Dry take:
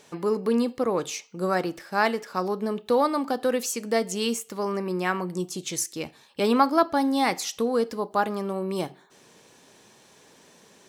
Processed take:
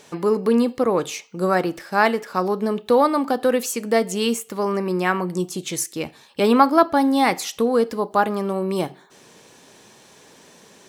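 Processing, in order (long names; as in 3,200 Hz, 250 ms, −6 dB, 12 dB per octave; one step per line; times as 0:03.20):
dynamic equaliser 5,600 Hz, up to −5 dB, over −47 dBFS, Q 1.2
level +5.5 dB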